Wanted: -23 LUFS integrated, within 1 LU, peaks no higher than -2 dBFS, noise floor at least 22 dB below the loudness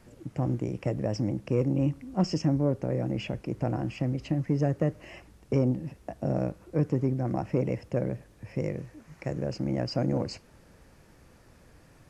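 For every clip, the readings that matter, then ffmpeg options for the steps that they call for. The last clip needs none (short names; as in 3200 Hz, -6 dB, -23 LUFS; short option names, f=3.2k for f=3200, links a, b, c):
loudness -30.0 LUFS; peak -13.0 dBFS; loudness target -23.0 LUFS
-> -af "volume=7dB"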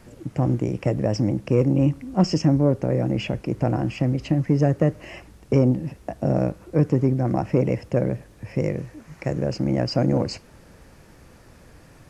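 loudness -23.0 LUFS; peak -6.0 dBFS; noise floor -50 dBFS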